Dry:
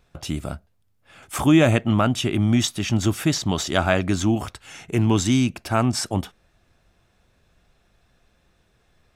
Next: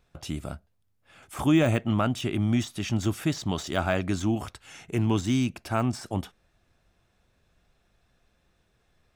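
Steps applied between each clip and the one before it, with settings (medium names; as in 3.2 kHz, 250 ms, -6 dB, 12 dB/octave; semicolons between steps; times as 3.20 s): de-esser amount 60%; trim -5.5 dB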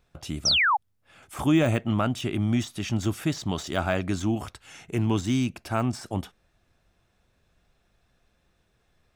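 painted sound fall, 0.45–0.77 s, 760–6200 Hz -21 dBFS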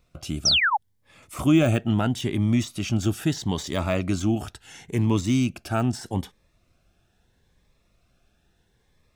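Shepard-style phaser rising 0.76 Hz; trim +3 dB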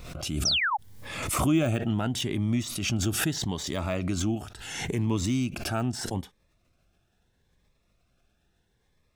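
swell ahead of each attack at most 43 dB/s; trim -5.5 dB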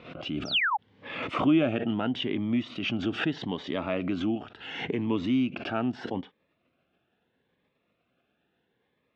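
cabinet simulation 190–3200 Hz, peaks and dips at 270 Hz +5 dB, 480 Hz +4 dB, 3 kHz +4 dB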